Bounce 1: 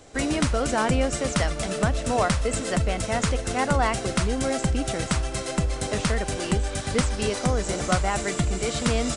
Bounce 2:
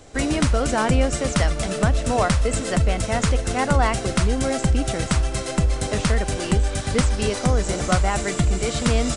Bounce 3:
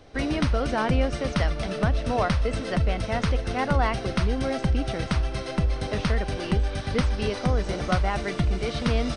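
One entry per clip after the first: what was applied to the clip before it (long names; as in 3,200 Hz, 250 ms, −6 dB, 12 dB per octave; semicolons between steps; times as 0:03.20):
low-shelf EQ 110 Hz +5.5 dB; level +2 dB
Savitzky-Golay smoothing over 15 samples; level −4 dB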